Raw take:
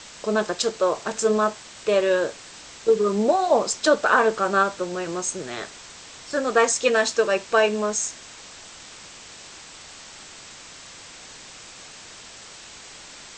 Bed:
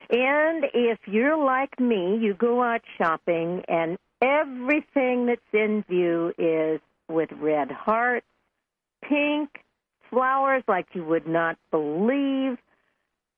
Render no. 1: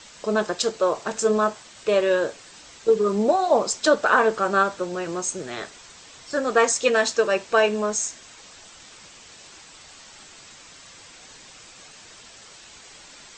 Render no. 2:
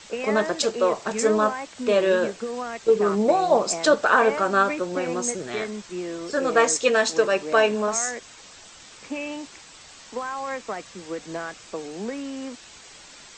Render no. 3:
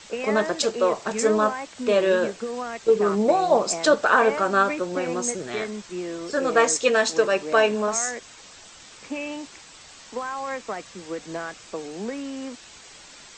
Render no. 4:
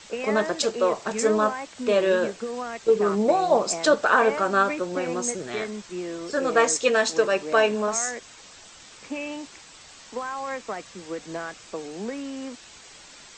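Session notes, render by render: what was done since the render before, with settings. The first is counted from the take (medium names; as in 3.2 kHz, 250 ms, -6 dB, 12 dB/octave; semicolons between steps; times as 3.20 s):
noise reduction 6 dB, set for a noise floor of -44 dBFS
add bed -9 dB
no audible change
trim -1 dB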